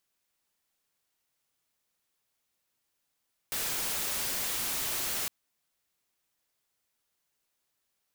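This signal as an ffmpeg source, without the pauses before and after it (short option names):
-f lavfi -i "anoisesrc=c=white:a=0.0411:d=1.76:r=44100:seed=1"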